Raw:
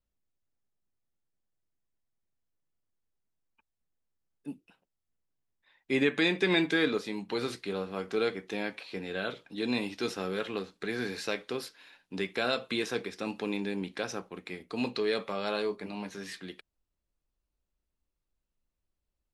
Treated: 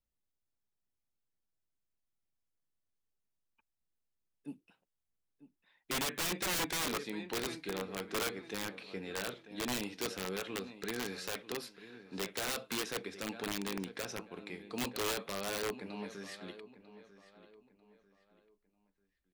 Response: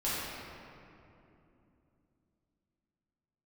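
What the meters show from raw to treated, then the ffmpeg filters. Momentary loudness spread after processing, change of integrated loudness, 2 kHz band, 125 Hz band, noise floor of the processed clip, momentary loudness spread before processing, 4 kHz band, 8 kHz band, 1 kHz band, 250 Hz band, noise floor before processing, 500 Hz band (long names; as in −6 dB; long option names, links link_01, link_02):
15 LU, −5.5 dB, −6.5 dB, −6.0 dB, −85 dBFS, 16 LU, −3.0 dB, +9.0 dB, −2.5 dB, −8.5 dB, below −85 dBFS, −8.5 dB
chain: -filter_complex "[0:a]asplit=2[link_01][link_02];[link_02]adelay=944,lowpass=frequency=3500:poles=1,volume=-15dB,asplit=2[link_03][link_04];[link_04]adelay=944,lowpass=frequency=3500:poles=1,volume=0.35,asplit=2[link_05][link_06];[link_06]adelay=944,lowpass=frequency=3500:poles=1,volume=0.35[link_07];[link_01][link_03][link_05][link_07]amix=inputs=4:normalize=0,aeval=exprs='(mod(15.8*val(0)+1,2)-1)/15.8':channel_layout=same,volume=-5dB"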